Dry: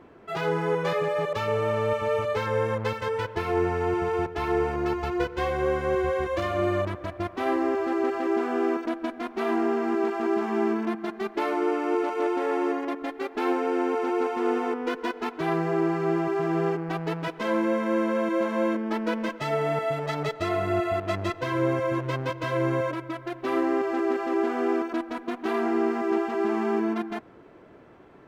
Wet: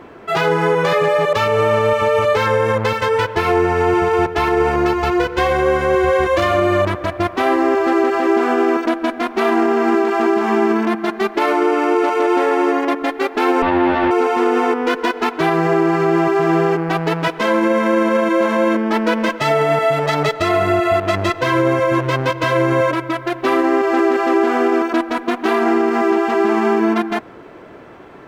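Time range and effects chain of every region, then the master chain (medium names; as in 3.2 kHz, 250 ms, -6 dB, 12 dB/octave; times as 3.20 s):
13.62–14.11 s: comb filter that takes the minimum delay 3.3 ms + low-pass 3.6 kHz 24 dB/octave + peaking EQ 450 Hz +4 dB 2.2 oct
whole clip: bass shelf 440 Hz -5 dB; loudness maximiser +20.5 dB; trim -6 dB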